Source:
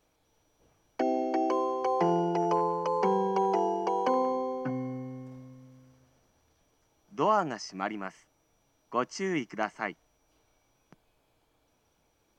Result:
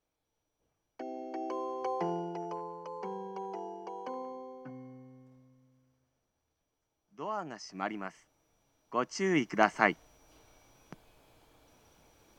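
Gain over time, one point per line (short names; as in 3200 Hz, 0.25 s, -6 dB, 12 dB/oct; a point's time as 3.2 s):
1.07 s -13.5 dB
1.85 s -5.5 dB
2.62 s -13.5 dB
7.22 s -13.5 dB
7.83 s -2.5 dB
8.97 s -2.5 dB
9.77 s +8 dB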